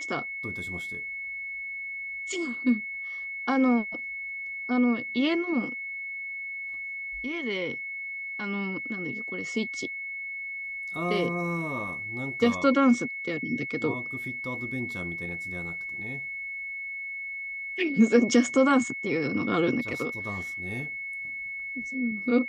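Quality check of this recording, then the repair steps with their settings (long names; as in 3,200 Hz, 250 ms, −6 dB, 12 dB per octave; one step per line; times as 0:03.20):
whistle 2,200 Hz −33 dBFS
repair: notch filter 2,200 Hz, Q 30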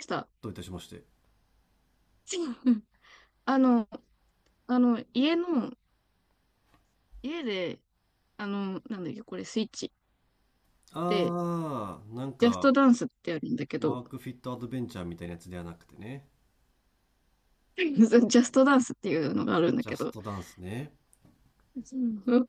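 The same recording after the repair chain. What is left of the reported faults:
none of them is left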